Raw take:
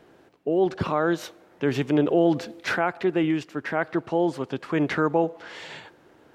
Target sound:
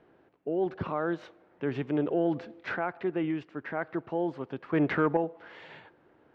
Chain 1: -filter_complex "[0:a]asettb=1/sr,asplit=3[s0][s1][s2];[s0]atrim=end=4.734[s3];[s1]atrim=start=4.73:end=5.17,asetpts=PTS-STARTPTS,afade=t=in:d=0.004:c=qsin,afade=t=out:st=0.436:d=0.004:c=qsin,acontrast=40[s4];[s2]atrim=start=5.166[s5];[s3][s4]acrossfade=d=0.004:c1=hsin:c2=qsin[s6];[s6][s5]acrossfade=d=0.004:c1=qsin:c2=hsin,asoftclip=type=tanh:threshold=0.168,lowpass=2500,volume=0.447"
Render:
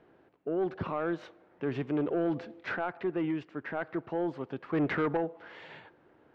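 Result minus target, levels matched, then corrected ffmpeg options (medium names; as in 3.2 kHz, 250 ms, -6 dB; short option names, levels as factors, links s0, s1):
saturation: distortion +15 dB
-filter_complex "[0:a]asettb=1/sr,asplit=3[s0][s1][s2];[s0]atrim=end=4.734[s3];[s1]atrim=start=4.73:end=5.17,asetpts=PTS-STARTPTS,afade=t=in:d=0.004:c=qsin,afade=t=out:st=0.436:d=0.004:c=qsin,acontrast=40[s4];[s2]atrim=start=5.166[s5];[s3][s4]acrossfade=d=0.004:c1=hsin:c2=qsin[s6];[s6][s5]acrossfade=d=0.004:c1=qsin:c2=hsin,asoftclip=type=tanh:threshold=0.562,lowpass=2500,volume=0.447"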